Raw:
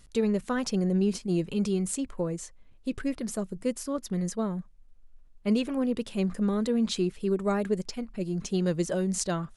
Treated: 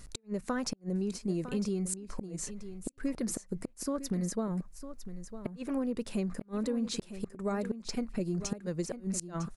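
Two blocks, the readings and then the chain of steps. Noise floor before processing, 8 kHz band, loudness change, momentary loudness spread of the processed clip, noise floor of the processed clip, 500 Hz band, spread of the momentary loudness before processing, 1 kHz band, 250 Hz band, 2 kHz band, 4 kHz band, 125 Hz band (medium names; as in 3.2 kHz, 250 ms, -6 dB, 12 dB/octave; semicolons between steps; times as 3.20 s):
-54 dBFS, -2.0 dB, -6.0 dB, 9 LU, -59 dBFS, -7.5 dB, 7 LU, -5.5 dB, -6.0 dB, -6.5 dB, -5.0 dB, -6.0 dB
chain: peaking EQ 3.2 kHz -8 dB 0.5 oct; compression 12:1, threshold -35 dBFS, peak gain reduction 15 dB; inverted gate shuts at -28 dBFS, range -39 dB; on a send: delay 954 ms -12 dB; on the sum: trim +6 dB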